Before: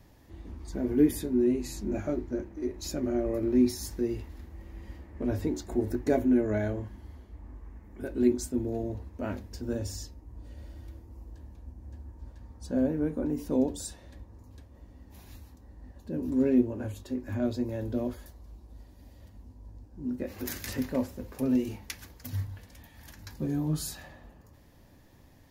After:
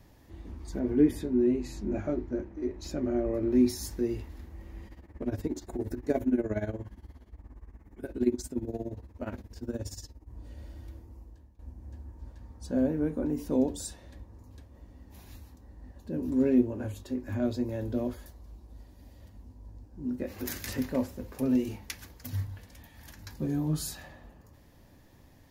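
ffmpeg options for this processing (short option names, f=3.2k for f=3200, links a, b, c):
-filter_complex "[0:a]asettb=1/sr,asplit=3[a][b][c];[a]atrim=end=0.794[d];[b]atrim=start=0.79:end=3.52,asetpts=PTS-STARTPTS,afade=t=in:d=0.004:c=qsin,afade=t=out:st=2.726:d=0.004:c=qsin,aemphasis=mode=reproduction:type=50kf[e];[c]atrim=start=3.516[f];[d][e]acrossfade=d=0.004:c1=hsin:c2=qsin[g];[g][f]acrossfade=d=0.004:c1=qsin:c2=hsin,asettb=1/sr,asplit=3[h][i][j];[h]atrim=end=4.874[k];[i]atrim=start=4.87:end=10.3,asetpts=PTS-STARTPTS,afade=t=in:d=0.004:c=qsin,afade=t=out:st=5.426:d=0.004:c=qsin,tremolo=f=17:d=0.82[l];[j]atrim=start=10.296[m];[k][l]acrossfade=d=0.004:c1=hsin:c2=qsin[n];[n][m]acrossfade=d=0.004:c1=qsin:c2=hsin,asplit=2[o][p];[o]atrim=end=11.59,asetpts=PTS-STARTPTS,afade=t=out:st=11.04:d=0.55:silence=0.133352[q];[p]atrim=start=11.59,asetpts=PTS-STARTPTS,afade=t=in:d=0.004:c=hsin:silence=0.133352[r];[q][r]concat=n=2:v=0:a=1"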